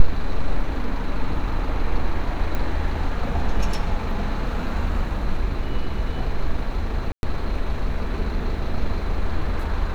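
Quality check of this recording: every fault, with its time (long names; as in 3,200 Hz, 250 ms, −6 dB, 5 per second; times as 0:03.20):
0:02.55: click −14 dBFS
0:07.12–0:07.23: drop-out 111 ms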